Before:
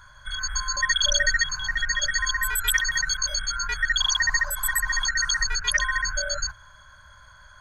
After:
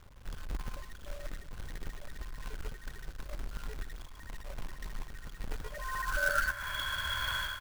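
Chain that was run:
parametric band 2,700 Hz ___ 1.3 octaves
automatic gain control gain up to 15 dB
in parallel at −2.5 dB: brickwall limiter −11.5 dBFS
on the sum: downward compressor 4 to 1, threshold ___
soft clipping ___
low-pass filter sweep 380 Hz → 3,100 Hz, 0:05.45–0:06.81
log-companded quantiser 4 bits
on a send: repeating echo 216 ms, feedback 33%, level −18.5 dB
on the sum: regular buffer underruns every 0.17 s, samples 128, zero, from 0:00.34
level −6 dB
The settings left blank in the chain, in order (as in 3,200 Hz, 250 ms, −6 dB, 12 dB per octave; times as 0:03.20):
+6.5 dB, −23 dBFS, −12 dBFS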